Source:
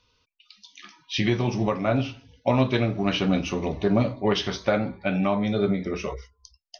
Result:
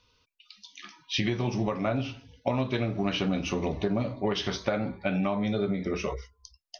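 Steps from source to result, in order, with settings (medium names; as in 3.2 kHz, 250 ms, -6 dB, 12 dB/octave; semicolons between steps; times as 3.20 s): compression, threshold -24 dBFS, peak gain reduction 8.5 dB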